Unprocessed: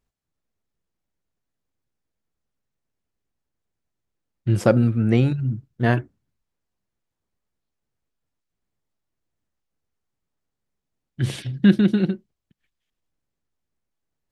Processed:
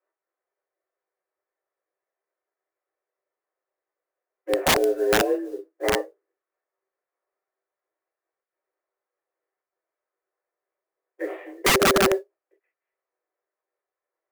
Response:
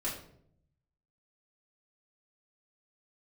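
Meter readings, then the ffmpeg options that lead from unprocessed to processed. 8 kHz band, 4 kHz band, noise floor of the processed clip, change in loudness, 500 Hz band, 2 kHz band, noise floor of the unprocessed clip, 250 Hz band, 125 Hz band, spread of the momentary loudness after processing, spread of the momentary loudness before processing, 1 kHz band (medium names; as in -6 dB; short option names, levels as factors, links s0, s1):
no reading, +10.5 dB, under -85 dBFS, -1.0 dB, +3.5 dB, +6.5 dB, -82 dBFS, -10.0 dB, -18.5 dB, 16 LU, 11 LU, +7.5 dB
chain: -filter_complex "[0:a]acrossover=split=590[s0][s1];[s1]acompressor=threshold=0.0178:ratio=8[s2];[s0][s2]amix=inputs=2:normalize=0,highpass=f=210:t=q:w=0.5412,highpass=f=210:t=q:w=1.307,lowpass=f=2000:t=q:w=0.5176,lowpass=f=2000:t=q:w=0.7071,lowpass=f=2000:t=q:w=1.932,afreqshift=190,acrusher=bits=7:mode=log:mix=0:aa=0.000001[s3];[1:a]atrim=start_sample=2205,atrim=end_sample=3087[s4];[s3][s4]afir=irnorm=-1:irlink=0,aeval=exprs='(mod(4.22*val(0)+1,2)-1)/4.22':c=same"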